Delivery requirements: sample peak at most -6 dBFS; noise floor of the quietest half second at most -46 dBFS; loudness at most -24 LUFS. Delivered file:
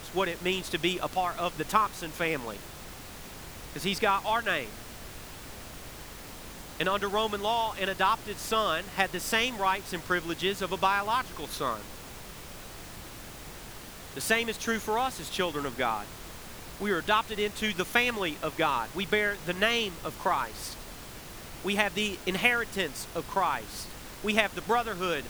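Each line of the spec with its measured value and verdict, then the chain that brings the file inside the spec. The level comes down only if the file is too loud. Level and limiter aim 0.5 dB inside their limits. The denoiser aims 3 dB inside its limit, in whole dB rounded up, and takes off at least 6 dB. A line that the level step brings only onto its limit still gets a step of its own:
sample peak -7.0 dBFS: OK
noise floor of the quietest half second -44 dBFS: fail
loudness -29.0 LUFS: OK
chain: denoiser 6 dB, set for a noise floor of -44 dBFS

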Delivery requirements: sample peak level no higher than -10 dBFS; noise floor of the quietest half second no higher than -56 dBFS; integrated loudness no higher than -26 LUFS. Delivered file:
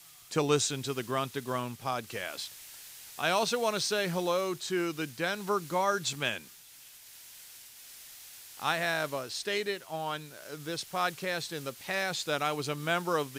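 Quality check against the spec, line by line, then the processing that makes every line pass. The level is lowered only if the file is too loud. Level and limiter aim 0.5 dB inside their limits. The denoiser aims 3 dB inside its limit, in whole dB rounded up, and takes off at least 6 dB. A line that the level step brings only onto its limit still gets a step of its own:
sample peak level -13.0 dBFS: OK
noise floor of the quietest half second -53 dBFS: fail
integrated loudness -32.0 LUFS: OK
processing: denoiser 6 dB, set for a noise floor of -53 dBFS

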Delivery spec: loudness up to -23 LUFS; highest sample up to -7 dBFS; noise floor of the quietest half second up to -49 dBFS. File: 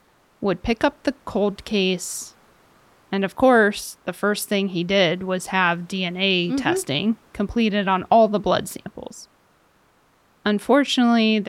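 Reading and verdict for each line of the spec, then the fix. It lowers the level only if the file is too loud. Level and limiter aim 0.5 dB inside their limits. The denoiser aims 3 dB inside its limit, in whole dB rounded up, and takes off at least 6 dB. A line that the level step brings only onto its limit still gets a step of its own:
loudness -21.0 LUFS: fail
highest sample -5.5 dBFS: fail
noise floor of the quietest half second -60 dBFS: OK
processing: gain -2.5 dB

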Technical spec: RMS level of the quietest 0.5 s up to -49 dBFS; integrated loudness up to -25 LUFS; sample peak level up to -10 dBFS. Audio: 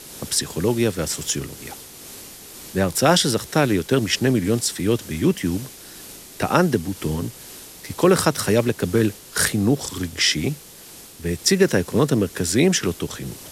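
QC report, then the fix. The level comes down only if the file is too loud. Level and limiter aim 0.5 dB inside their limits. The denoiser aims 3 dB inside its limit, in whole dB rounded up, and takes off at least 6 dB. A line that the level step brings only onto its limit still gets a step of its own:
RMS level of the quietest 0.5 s -43 dBFS: fail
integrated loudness -21.0 LUFS: fail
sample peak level -3.5 dBFS: fail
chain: denoiser 6 dB, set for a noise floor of -43 dBFS; gain -4.5 dB; limiter -10.5 dBFS

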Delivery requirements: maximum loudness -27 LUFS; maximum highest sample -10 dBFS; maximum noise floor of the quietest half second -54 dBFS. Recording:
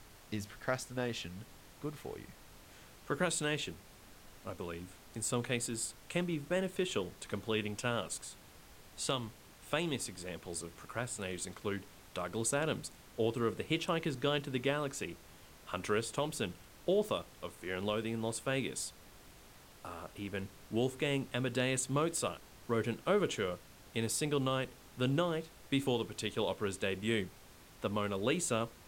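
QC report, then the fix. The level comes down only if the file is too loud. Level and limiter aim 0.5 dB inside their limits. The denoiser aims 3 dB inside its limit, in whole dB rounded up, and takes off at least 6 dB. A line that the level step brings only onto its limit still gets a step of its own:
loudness -36.5 LUFS: OK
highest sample -19.5 dBFS: OK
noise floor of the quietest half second -57 dBFS: OK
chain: none

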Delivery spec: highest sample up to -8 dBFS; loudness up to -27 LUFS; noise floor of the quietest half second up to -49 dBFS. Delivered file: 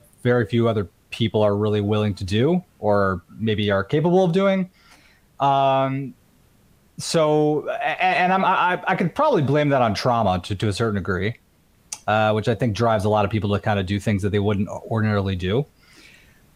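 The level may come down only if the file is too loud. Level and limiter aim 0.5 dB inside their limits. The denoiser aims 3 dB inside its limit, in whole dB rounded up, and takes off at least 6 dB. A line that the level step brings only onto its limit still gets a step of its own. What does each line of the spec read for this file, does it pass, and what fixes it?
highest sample -5.5 dBFS: fail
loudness -21.0 LUFS: fail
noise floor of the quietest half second -58 dBFS: OK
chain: gain -6.5 dB

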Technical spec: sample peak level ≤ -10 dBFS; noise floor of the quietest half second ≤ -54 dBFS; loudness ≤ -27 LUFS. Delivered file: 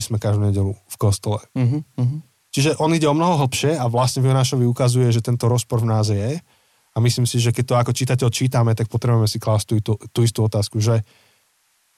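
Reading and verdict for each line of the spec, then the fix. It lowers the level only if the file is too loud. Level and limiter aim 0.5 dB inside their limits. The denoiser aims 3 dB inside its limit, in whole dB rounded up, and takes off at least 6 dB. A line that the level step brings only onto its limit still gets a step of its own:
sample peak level -7.5 dBFS: fail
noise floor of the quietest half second -63 dBFS: OK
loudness -19.5 LUFS: fail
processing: gain -8 dB

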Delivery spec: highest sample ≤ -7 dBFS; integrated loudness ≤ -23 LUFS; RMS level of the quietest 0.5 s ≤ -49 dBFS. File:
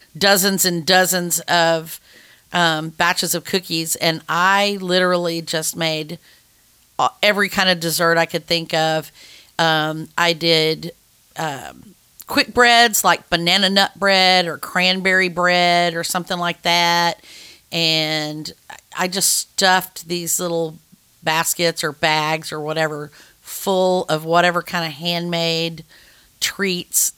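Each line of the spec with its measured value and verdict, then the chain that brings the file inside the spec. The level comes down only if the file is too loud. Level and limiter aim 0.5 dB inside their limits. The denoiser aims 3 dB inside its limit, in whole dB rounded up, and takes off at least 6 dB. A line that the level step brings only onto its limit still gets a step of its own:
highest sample -1.5 dBFS: fail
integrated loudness -17.5 LUFS: fail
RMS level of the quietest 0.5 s -55 dBFS: OK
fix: gain -6 dB

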